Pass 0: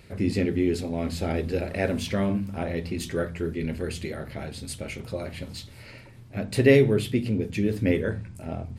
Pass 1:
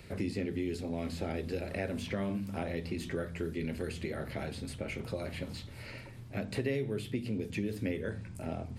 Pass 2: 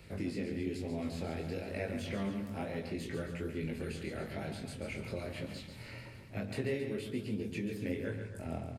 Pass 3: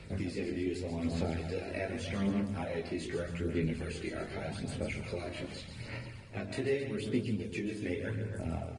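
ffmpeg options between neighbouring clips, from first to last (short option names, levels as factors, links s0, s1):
-filter_complex "[0:a]acrossover=split=180|2700[s0][s1][s2];[s0]acompressor=threshold=0.00794:ratio=4[s3];[s1]acompressor=threshold=0.0178:ratio=4[s4];[s2]acompressor=threshold=0.00282:ratio=4[s5];[s3][s4][s5]amix=inputs=3:normalize=0"
-af "flanger=delay=19:depth=5.9:speed=1.1,aecho=1:1:139.9|271.1:0.398|0.251"
-af "aphaser=in_gain=1:out_gain=1:delay=3.1:decay=0.45:speed=0.84:type=sinusoidal,volume=1.12" -ar 22050 -c:a libvorbis -b:a 32k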